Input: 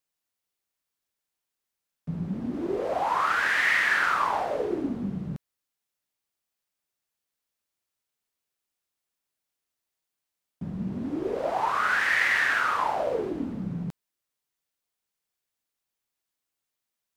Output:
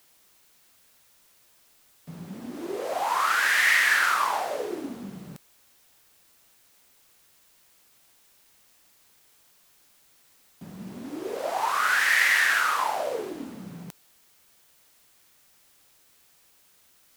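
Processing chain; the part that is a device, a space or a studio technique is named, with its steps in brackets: turntable without a phono preamp (RIAA curve recording; white noise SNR 31 dB)

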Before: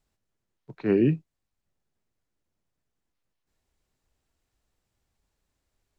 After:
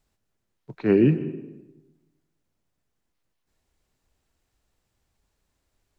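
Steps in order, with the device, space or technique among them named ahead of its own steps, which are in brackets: filtered reverb send (on a send: high-pass 180 Hz + low-pass 3.6 kHz + reverberation RT60 1.1 s, pre-delay 110 ms, DRR 12.5 dB); on the sum: trim +3.5 dB

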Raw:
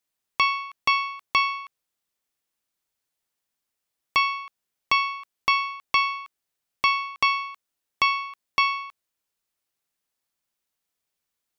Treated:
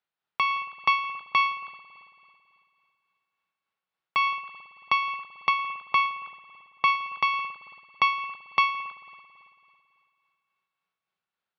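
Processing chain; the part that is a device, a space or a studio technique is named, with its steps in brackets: 5.49–6.88 s: distance through air 100 m; combo amplifier with spring reverb and tremolo (spring tank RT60 2.6 s, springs 55 ms, chirp 45 ms, DRR 10.5 dB; tremolo 3.5 Hz, depth 37%; cabinet simulation 100–4000 Hz, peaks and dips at 180 Hz +6 dB, 260 Hz -8 dB, 840 Hz +5 dB, 1.4 kHz +7 dB); trim -1.5 dB

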